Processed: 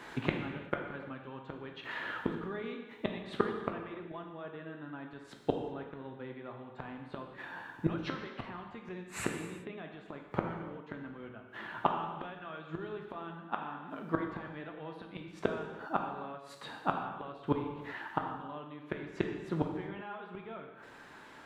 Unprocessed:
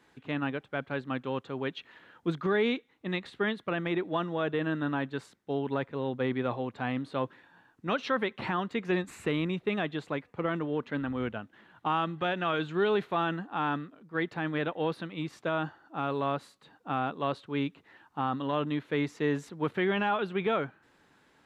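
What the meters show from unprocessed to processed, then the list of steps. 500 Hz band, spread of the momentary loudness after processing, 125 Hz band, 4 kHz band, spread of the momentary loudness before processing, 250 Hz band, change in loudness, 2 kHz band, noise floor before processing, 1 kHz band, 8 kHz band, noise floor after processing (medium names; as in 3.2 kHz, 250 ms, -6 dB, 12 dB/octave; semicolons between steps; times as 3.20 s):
-8.5 dB, 11 LU, -6.0 dB, -9.5 dB, 8 LU, -7.0 dB, -7.5 dB, -7.5 dB, -65 dBFS, -6.0 dB, no reading, -53 dBFS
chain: gain riding 2 s; dynamic bell 180 Hz, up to +6 dB, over -45 dBFS, Q 0.82; inverted gate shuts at -26 dBFS, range -29 dB; peaking EQ 1.1 kHz +6 dB 2.6 oct; gated-style reverb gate 420 ms falling, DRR 2 dB; trim +7.5 dB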